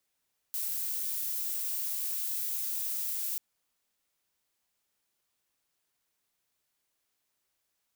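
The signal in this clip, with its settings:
noise violet, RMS −33.5 dBFS 2.84 s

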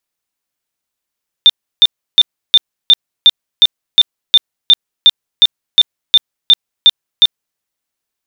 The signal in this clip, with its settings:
tone bursts 3,590 Hz, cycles 127, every 0.36 s, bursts 17, −1.5 dBFS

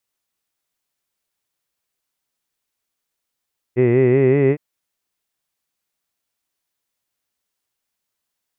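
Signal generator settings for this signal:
vowel by formant synthesis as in hid, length 0.81 s, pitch 120 Hz, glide +3 semitones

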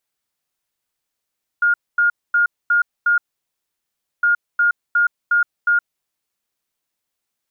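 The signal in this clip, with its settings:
beeps in groups sine 1,420 Hz, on 0.12 s, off 0.24 s, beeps 5, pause 1.05 s, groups 2, −12 dBFS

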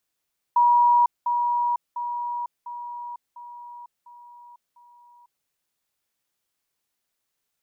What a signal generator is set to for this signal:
level staircase 961 Hz −14 dBFS, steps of −6 dB, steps 7, 0.50 s 0.20 s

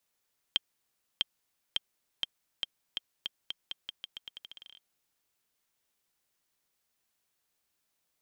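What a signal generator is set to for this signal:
bouncing ball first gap 0.65 s, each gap 0.85, 3,180 Hz, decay 22 ms −12 dBFS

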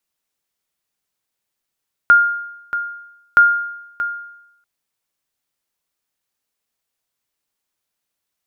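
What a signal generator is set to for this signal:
ping with an echo 1,410 Hz, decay 0.84 s, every 1.27 s, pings 2, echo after 0.63 s, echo −12 dB −3.5 dBFS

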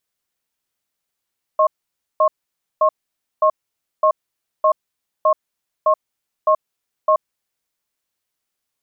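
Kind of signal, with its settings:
tone pair in a cadence 624 Hz, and 1,080 Hz, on 0.08 s, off 0.53 s, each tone −13.5 dBFS 5.72 s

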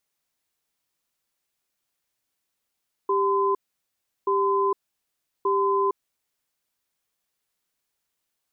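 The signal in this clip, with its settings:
tone pair in a cadence 394 Hz, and 1,020 Hz, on 0.46 s, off 0.72 s, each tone −22 dBFS 3.25 s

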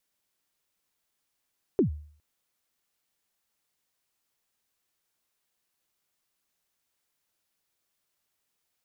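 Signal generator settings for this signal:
synth kick length 0.41 s, from 440 Hz, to 75 Hz, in 110 ms, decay 0.51 s, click off, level −16 dB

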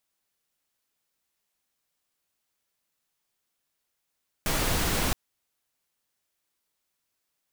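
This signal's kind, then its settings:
noise pink, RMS −26 dBFS 0.67 s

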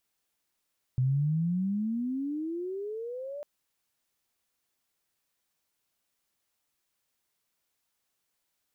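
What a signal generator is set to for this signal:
pitch glide with a swell sine, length 2.45 s, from 125 Hz, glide +27 semitones, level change −13.5 dB, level −22.5 dB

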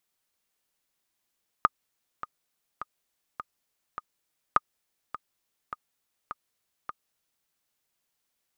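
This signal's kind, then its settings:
click track 103 BPM, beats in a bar 5, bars 2, 1,230 Hz, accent 15.5 dB −6 dBFS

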